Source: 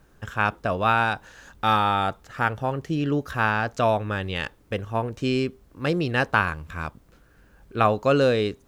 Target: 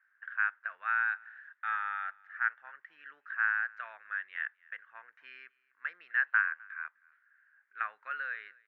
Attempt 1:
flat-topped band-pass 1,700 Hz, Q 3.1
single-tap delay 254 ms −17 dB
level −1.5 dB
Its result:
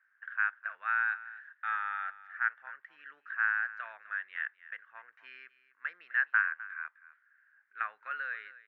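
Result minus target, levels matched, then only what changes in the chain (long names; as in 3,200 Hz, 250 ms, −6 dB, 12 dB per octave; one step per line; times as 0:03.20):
echo-to-direct +8.5 dB
change: single-tap delay 254 ms −25.5 dB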